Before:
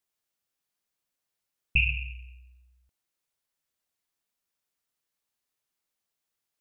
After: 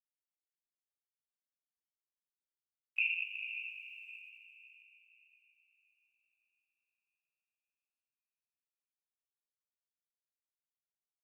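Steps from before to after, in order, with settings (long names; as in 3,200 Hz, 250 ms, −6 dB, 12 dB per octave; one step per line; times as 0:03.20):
high-pass filter 1,400 Hz 24 dB per octave
tape wow and flutter 20 cents
time stretch by overlap-add 1.7×, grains 85 ms
bit reduction 12 bits
feedback delay with all-pass diffusion 457 ms, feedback 44%, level −8 dB
level −7.5 dB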